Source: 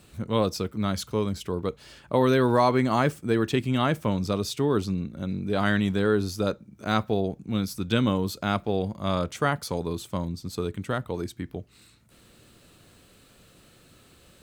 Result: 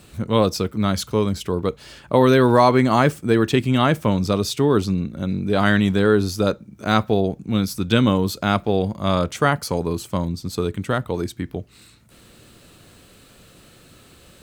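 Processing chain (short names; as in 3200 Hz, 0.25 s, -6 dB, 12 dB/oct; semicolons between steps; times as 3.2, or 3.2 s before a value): 9.56–10.11 notch 3600 Hz, Q 6; gain +6.5 dB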